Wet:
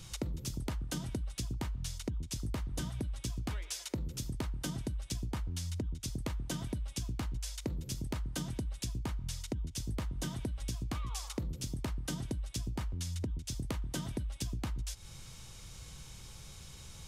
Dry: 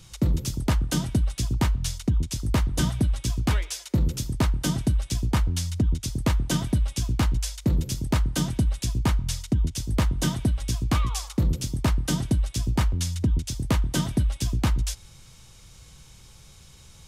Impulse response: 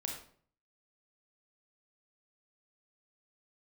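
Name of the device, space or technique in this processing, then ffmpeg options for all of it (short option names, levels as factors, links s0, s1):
serial compression, leveller first: -af "acompressor=threshold=0.0631:ratio=2,acompressor=threshold=0.0178:ratio=6"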